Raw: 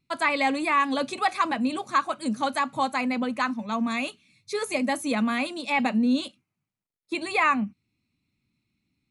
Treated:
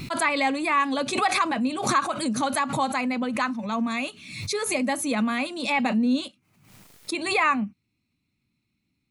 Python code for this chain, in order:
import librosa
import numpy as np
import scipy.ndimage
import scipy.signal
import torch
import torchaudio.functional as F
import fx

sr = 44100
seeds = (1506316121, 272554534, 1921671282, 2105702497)

y = fx.pre_swell(x, sr, db_per_s=63.0)